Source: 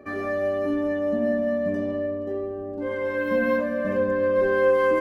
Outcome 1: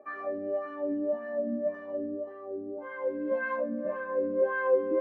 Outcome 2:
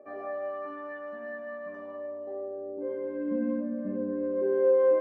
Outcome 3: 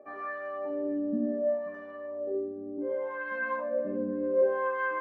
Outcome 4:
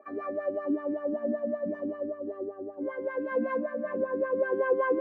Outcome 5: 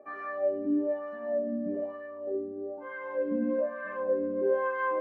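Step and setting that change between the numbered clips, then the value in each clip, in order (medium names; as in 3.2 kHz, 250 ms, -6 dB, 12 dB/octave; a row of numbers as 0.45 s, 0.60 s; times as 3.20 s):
wah-wah, rate: 1.8 Hz, 0.2 Hz, 0.67 Hz, 5.2 Hz, 1.1 Hz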